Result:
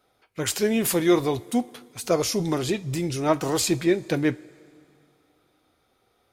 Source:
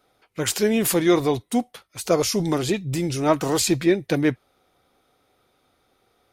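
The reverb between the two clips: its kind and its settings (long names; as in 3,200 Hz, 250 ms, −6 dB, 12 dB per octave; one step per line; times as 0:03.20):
coupled-rooms reverb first 0.23 s, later 2.5 s, from −18 dB, DRR 13.5 dB
level −2.5 dB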